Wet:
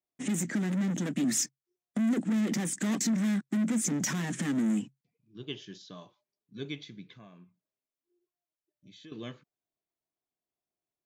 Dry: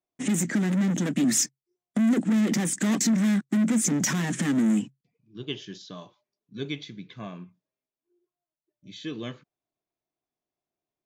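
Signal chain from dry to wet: 7.14–9.12 s: compression 2.5:1, threshold -48 dBFS, peak gain reduction 12 dB; trim -5.5 dB

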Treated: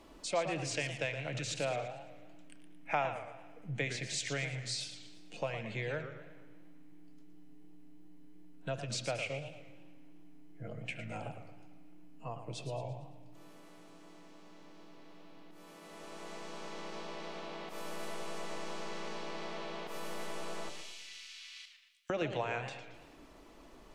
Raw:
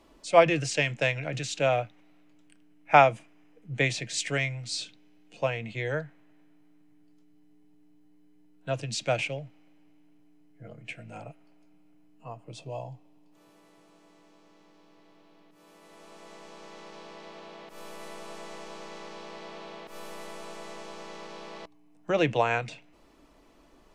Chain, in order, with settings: 20.69–22.10 s: inverse Chebyshev high-pass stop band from 520 Hz, stop band 70 dB; compression 2.5:1, threshold -41 dBFS, peak gain reduction 18.5 dB; on a send: bucket-brigade echo 72 ms, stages 2048, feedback 70%, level -16 dB; on the sum: modulated delay 113 ms, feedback 45%, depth 203 cents, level -9.5 dB; trim +2 dB

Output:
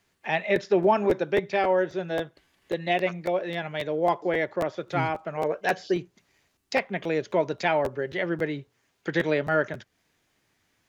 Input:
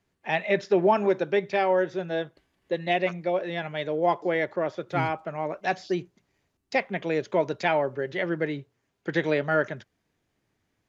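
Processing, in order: 5.37–5.94 s: small resonant body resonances 470/1600/3000 Hz, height 12 dB; crackling interface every 0.27 s, samples 512, repeat, from 0.55 s; tape noise reduction on one side only encoder only

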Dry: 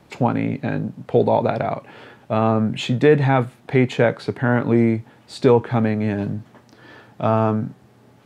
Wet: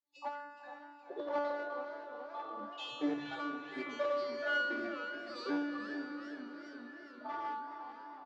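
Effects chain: time reversed locally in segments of 58 ms; spectral noise reduction 29 dB; granulator, grains 20 per s, spray 18 ms, pitch spread up and down by 0 st; feedback comb 290 Hz, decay 1 s, mix 100%; one-sided clip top -47 dBFS; cabinet simulation 200–5400 Hz, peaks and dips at 380 Hz +8 dB, 870 Hz +4 dB, 2.7 kHz -4 dB; doubling 20 ms -11 dB; on a send: echo that smears into a reverb 467 ms, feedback 55%, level -10 dB; on the sum: modulated delay 423 ms, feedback 73%, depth 193 cents, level -15.5 dB; trim +8 dB

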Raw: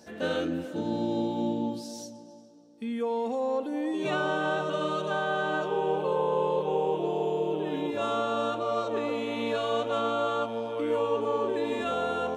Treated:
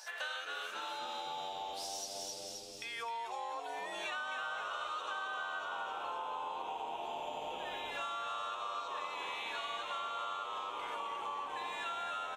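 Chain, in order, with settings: high-pass 930 Hz 24 dB/octave; frequency-shifting echo 262 ms, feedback 57%, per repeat -91 Hz, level -4.5 dB; compression, threshold -46 dBFS, peak gain reduction 17 dB; trim +7.5 dB

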